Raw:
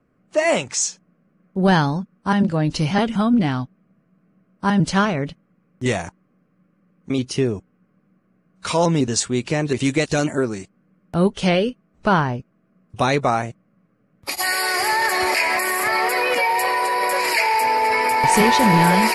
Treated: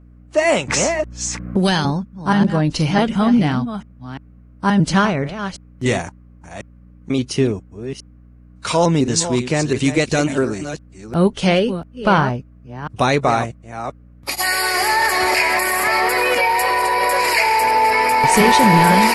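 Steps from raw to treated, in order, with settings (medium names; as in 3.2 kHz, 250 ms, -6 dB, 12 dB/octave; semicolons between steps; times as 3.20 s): chunks repeated in reverse 348 ms, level -10.5 dB; hum 60 Hz, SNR 27 dB; 0.68–1.85 s: three bands compressed up and down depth 100%; trim +2.5 dB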